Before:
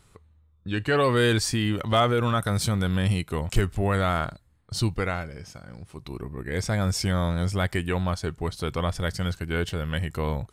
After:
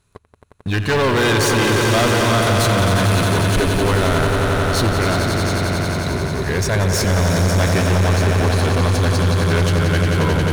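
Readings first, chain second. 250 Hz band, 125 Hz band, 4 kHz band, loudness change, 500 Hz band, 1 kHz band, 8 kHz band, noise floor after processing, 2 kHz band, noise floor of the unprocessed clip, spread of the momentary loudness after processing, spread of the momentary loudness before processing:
+8.5 dB, +10.0 dB, +9.5 dB, +9.0 dB, +9.5 dB, +9.0 dB, +11.5 dB, -47 dBFS, +11.0 dB, -60 dBFS, 5 LU, 14 LU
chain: rippled EQ curve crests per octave 1.5, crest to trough 6 dB; one-sided clip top -33.5 dBFS, bottom -15 dBFS; echo with a slow build-up 89 ms, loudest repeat 5, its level -8 dB; waveshaping leveller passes 3

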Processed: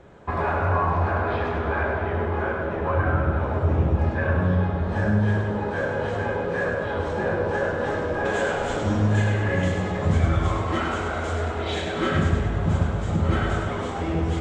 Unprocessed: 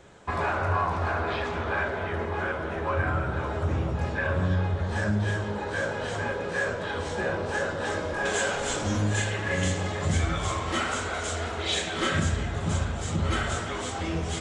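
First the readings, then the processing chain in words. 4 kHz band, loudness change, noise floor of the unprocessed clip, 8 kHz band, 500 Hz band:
-4.0 dB, +4.0 dB, -33 dBFS, -10.0 dB, +5.0 dB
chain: low-pass 1.1 kHz 6 dB/octave; on a send: two-band feedback delay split 800 Hz, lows 133 ms, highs 100 ms, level -5.5 dB; on the sum: trim +4.5 dB

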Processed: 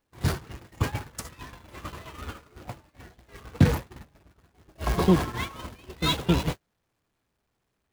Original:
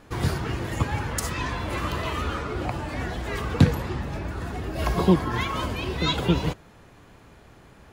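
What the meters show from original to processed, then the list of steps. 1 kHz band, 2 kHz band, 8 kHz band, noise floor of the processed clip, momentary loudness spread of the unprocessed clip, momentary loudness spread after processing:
-5.0 dB, -5.5 dB, -3.5 dB, -78 dBFS, 10 LU, 21 LU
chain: jump at every zero crossing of -24 dBFS; gate -21 dBFS, range -46 dB; trim -2.5 dB

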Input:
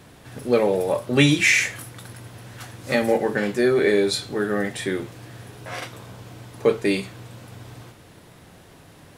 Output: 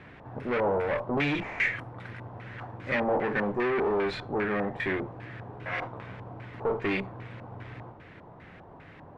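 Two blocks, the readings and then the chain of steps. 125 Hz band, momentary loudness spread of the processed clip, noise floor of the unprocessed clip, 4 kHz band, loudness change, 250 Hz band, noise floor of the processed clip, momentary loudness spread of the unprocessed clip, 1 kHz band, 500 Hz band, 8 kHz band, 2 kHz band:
-8.0 dB, 17 LU, -49 dBFS, -14.5 dB, -8.5 dB, -8.5 dB, -50 dBFS, 22 LU, -0.5 dB, -7.5 dB, under -30 dB, -6.5 dB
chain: valve stage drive 26 dB, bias 0.5; LFO low-pass square 2.5 Hz 910–2100 Hz

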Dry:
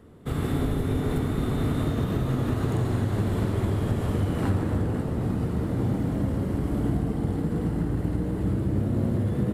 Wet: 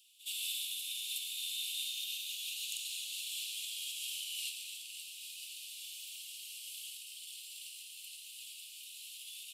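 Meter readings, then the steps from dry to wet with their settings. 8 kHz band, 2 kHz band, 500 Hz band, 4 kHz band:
+9.0 dB, -6.5 dB, under -40 dB, +9.0 dB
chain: steep high-pass 2.6 kHz 96 dB/octave; on a send: reverse echo 69 ms -17.5 dB; on the sum: trim +9 dB

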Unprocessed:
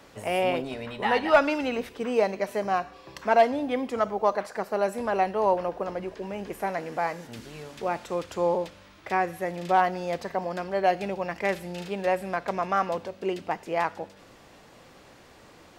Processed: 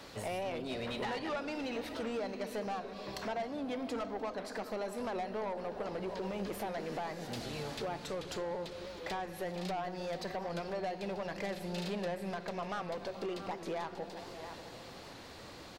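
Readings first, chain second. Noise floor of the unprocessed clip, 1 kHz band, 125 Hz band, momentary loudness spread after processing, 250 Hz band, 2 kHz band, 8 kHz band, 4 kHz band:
-53 dBFS, -14.0 dB, -5.0 dB, 6 LU, -7.5 dB, -12.0 dB, -4.0 dB, -4.5 dB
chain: peaking EQ 4.2 kHz +7.5 dB 0.55 oct; delay 659 ms -23.5 dB; compression 6:1, threshold -33 dBFS, peak gain reduction 18 dB; saturation -33.5 dBFS, distortion -11 dB; delay with an opening low-pass 147 ms, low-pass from 200 Hz, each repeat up 1 oct, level -6 dB; warped record 78 rpm, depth 100 cents; trim +1 dB

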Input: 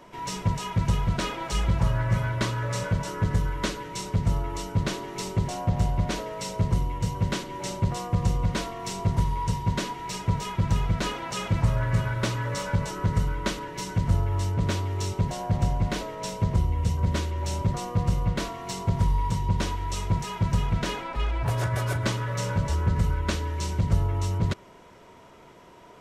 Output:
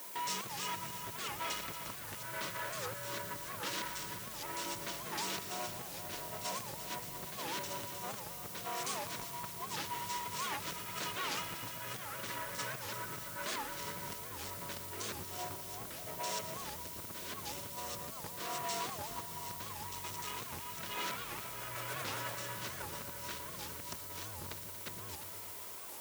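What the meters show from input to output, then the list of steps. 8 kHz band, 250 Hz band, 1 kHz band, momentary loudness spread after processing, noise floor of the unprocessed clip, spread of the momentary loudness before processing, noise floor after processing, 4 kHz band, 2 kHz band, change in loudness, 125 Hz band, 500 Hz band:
-3.5 dB, -19.0 dB, -9.0 dB, 5 LU, -50 dBFS, 5 LU, -46 dBFS, -5.5 dB, -6.5 dB, -12.5 dB, -27.0 dB, -12.0 dB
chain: chunks repeated in reverse 466 ms, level -1 dB; level held to a coarse grid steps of 19 dB; treble shelf 4.3 kHz -11.5 dB; compression 2.5:1, threshold -34 dBFS, peak gain reduction 12 dB; saturation -37 dBFS, distortion -6 dB; added noise white -65 dBFS; high-pass 140 Hz 6 dB/octave; tilt EQ +3.5 dB/octave; band-stop 790 Hz, Q 12; on a send: multi-head delay 117 ms, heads all three, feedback 49%, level -14 dB; on the sum: warped record 78 rpm, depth 250 cents; trim +4.5 dB

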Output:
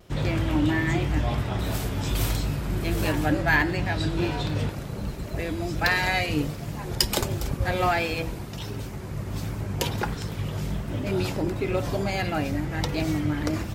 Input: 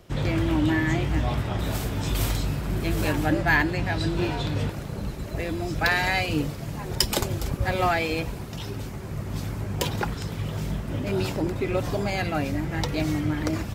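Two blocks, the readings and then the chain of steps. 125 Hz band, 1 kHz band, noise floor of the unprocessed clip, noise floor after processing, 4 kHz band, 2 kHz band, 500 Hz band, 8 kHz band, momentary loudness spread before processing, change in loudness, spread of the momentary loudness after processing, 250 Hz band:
0.0 dB, -0.5 dB, -35 dBFS, -35 dBFS, 0.0 dB, -0.5 dB, -0.5 dB, 0.0 dB, 10 LU, -0.5 dB, 10 LU, -0.5 dB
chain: vibrato 1.4 Hz 43 cents; de-hum 81.08 Hz, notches 27

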